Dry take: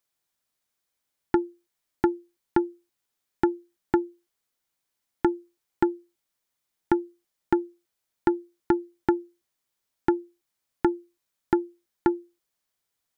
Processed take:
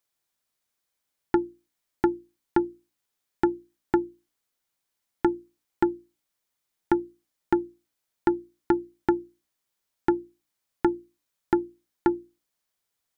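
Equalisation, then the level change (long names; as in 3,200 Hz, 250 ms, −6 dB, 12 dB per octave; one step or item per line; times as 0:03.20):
mains-hum notches 60/120/180/240/300 Hz
0.0 dB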